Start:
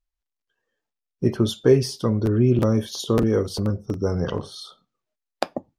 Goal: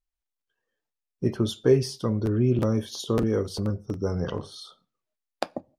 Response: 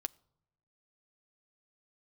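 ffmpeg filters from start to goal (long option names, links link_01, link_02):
-filter_complex "[0:a]asplit=2[link_01][link_02];[1:a]atrim=start_sample=2205,atrim=end_sample=3969,asetrate=22050,aresample=44100[link_03];[link_02][link_03]afir=irnorm=-1:irlink=0,volume=-7.5dB[link_04];[link_01][link_04]amix=inputs=2:normalize=0,volume=-8dB"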